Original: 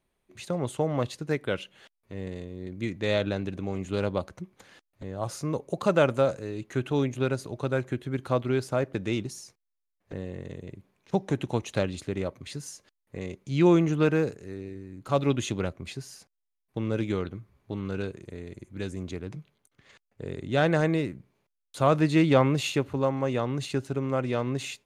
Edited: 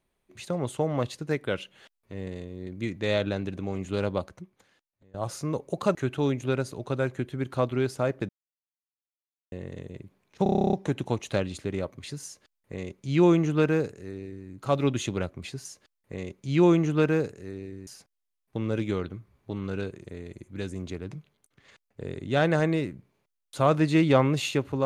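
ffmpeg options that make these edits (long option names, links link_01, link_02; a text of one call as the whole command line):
ffmpeg -i in.wav -filter_complex "[0:a]asplit=17[link_01][link_02][link_03][link_04][link_05][link_06][link_07][link_08][link_09][link_10][link_11][link_12][link_13][link_14][link_15][link_16][link_17];[link_01]atrim=end=5.14,asetpts=PTS-STARTPTS,afade=type=out:start_time=4.19:duration=0.95:curve=qua:silence=0.0749894[link_18];[link_02]atrim=start=5.14:end=5.952,asetpts=PTS-STARTPTS,afade=type=in:duration=0.004:curve=hsin:silence=0.0749894[link_19];[link_03]atrim=start=6.678:end=9.02,asetpts=PTS-STARTPTS,afade=type=out:start_time=2.338:duration=0.004:curve=hsin[link_20];[link_04]atrim=start=9.02:end=10.25,asetpts=PTS-STARTPTS,volume=0[link_21];[link_05]atrim=start=10.25:end=11.192,asetpts=PTS-STARTPTS,afade=type=in:duration=0.004:curve=hsin[link_22];[link_06]atrim=start=11.158:end=11.192[link_23];[link_07]atrim=start=11.158:end=11.192[link_24];[link_08]atrim=start=11.158:end=11.192[link_25];[link_09]atrim=start=11.158:end=11.192[link_26];[link_10]atrim=start=11.158:end=11.192[link_27];[link_11]atrim=start=11.158:end=11.192[link_28];[link_12]atrim=start=11.158:end=11.192[link_29];[link_13]atrim=start=11.158:end=11.192[link_30];[link_14]atrim=start=11.158:end=11.192[link_31];[link_15]atrim=start=11.158:end=16.082[link_32];[link_16]atrim=start=12.678:end=14.902[link_33];[link_17]atrim=start=16.078[link_34];[link_18][link_19]concat=n=2:v=0:a=1[link_35];[link_20][link_21][link_22]concat=n=3:v=0:a=1[link_36];[link_35][link_36]acrossfade=duration=0.004:curve1=hsin:curve2=hsin[link_37];[link_37][link_23]acrossfade=duration=0.004:curve1=hsin:curve2=hsin[link_38];[link_38][link_24]acrossfade=duration=0.004:curve1=hsin:curve2=hsin[link_39];[link_39][link_25]acrossfade=duration=0.004:curve1=hsin:curve2=hsin[link_40];[link_40][link_26]acrossfade=duration=0.004:curve1=hsin:curve2=hsin[link_41];[link_41][link_27]acrossfade=duration=0.004:curve1=hsin:curve2=hsin[link_42];[link_42][link_28]acrossfade=duration=0.004:curve1=hsin:curve2=hsin[link_43];[link_43][link_29]acrossfade=duration=0.004:curve1=hsin:curve2=hsin[link_44];[link_44][link_30]acrossfade=duration=0.004:curve1=hsin:curve2=hsin[link_45];[link_45][link_31]acrossfade=duration=0.004:curve1=hsin:curve2=hsin[link_46];[link_46][link_32]acrossfade=duration=0.004:curve1=hsin:curve2=hsin[link_47];[link_47][link_33]acrossfade=duration=0.004:curve1=hsin:curve2=hsin[link_48];[link_48][link_34]acrossfade=duration=0.004:curve1=hsin:curve2=hsin" out.wav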